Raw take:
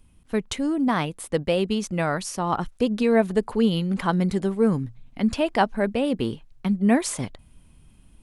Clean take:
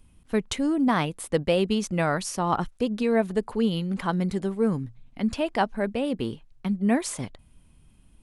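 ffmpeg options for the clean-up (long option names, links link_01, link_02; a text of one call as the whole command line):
ffmpeg -i in.wav -af "asetnsamples=nb_out_samples=441:pad=0,asendcmd='2.66 volume volume -3.5dB',volume=0dB" out.wav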